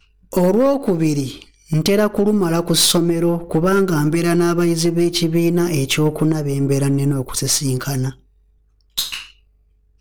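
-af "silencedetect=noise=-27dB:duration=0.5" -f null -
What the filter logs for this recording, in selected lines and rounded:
silence_start: 8.10
silence_end: 8.98 | silence_duration: 0.87
silence_start: 9.23
silence_end: 10.01 | silence_duration: 0.78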